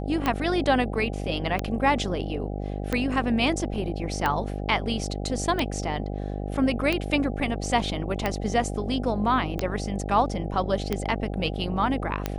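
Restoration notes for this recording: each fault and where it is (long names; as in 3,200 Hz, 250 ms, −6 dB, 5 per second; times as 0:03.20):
mains buzz 50 Hz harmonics 16 −31 dBFS
scratch tick 45 rpm −11 dBFS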